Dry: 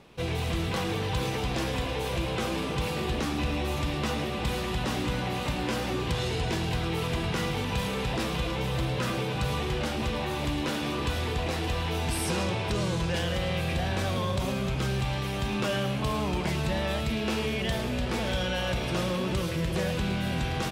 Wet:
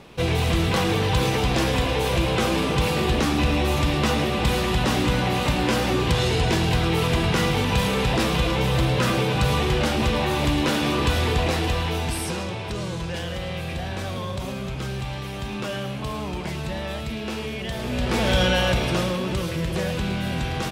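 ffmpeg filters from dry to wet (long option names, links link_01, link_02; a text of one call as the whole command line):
ffmpeg -i in.wav -af "volume=19dB,afade=type=out:start_time=11.38:duration=1.04:silence=0.354813,afade=type=in:start_time=17.74:duration=0.69:silence=0.281838,afade=type=out:start_time=18.43:duration=0.76:silence=0.446684" out.wav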